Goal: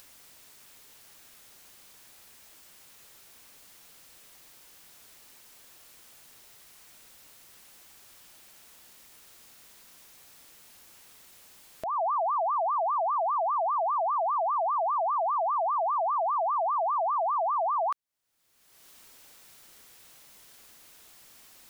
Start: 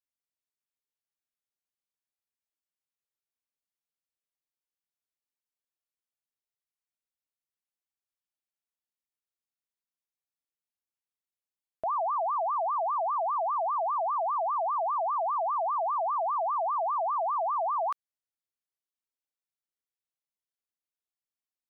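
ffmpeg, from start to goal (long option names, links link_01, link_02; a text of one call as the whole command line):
ffmpeg -i in.wav -af "acompressor=mode=upward:threshold=-33dB:ratio=2.5,alimiter=level_in=5.5dB:limit=-24dB:level=0:latency=1:release=434,volume=-5.5dB,volume=5.5dB" out.wav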